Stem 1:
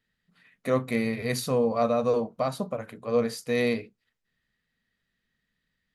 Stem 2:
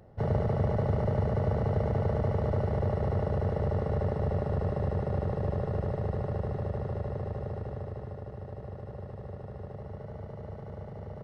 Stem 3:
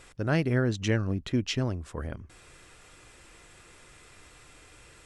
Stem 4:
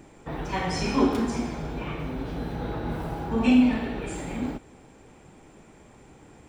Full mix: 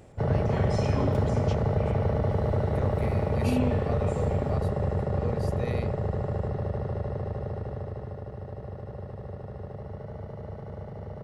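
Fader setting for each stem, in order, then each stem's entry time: −12.5, +2.5, −14.0, −10.0 decibels; 2.10, 0.00, 0.00, 0.00 seconds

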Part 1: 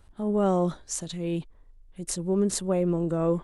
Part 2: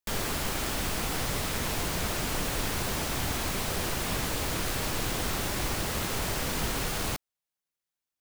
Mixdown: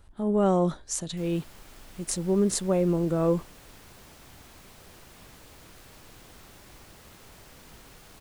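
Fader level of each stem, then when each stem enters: +1.0, −20.0 decibels; 0.00, 1.10 seconds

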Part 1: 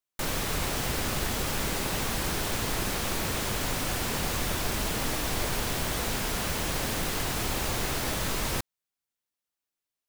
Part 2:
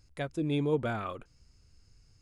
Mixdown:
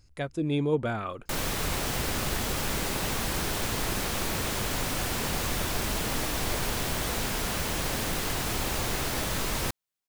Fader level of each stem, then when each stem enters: 0.0, +2.5 decibels; 1.10, 0.00 seconds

